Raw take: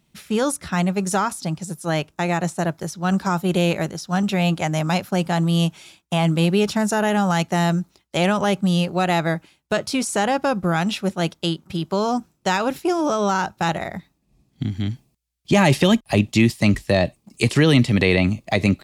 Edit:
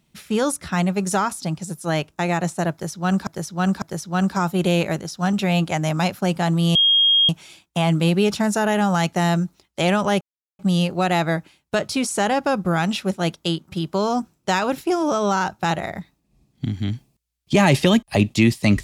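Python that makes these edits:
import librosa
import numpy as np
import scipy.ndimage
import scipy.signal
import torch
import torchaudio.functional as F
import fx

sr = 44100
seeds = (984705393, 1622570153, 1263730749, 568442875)

y = fx.edit(x, sr, fx.repeat(start_s=2.72, length_s=0.55, count=3),
    fx.insert_tone(at_s=5.65, length_s=0.54, hz=3250.0, db=-12.5),
    fx.insert_silence(at_s=8.57, length_s=0.38), tone=tone)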